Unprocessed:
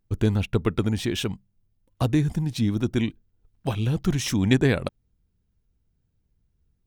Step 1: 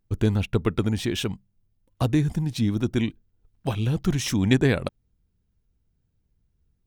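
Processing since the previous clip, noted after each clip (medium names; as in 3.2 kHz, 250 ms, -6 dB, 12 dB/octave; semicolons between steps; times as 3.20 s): no audible change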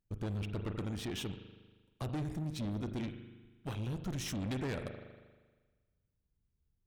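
spring tank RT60 1.4 s, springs 39 ms, chirp 40 ms, DRR 10 dB; valve stage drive 25 dB, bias 0.55; trim -8.5 dB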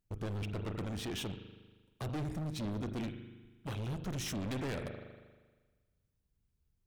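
wavefolder -34 dBFS; trim +1.5 dB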